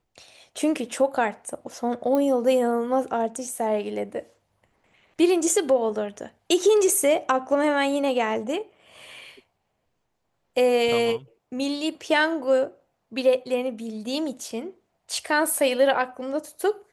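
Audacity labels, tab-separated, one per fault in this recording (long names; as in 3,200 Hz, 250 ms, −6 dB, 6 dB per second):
2.150000	2.150000	click −14 dBFS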